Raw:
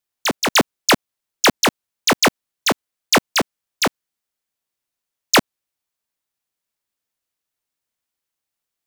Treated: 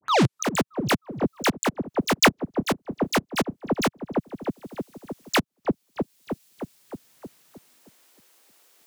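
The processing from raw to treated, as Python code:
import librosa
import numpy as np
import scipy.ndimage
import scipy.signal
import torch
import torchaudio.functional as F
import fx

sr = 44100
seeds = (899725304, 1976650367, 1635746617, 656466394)

y = fx.tape_start_head(x, sr, length_s=0.49)
y = fx.filter_sweep_highpass(y, sr, from_hz=130.0, to_hz=380.0, start_s=7.41, end_s=8.09, q=1.4)
y = fx.leveller(y, sr, passes=2)
y = fx.echo_wet_lowpass(y, sr, ms=311, feedback_pct=42, hz=440.0, wet_db=-16.0)
y = fx.auto_swell(y, sr, attack_ms=413.0)
y = fx.band_squash(y, sr, depth_pct=70)
y = y * librosa.db_to_amplitude(7.0)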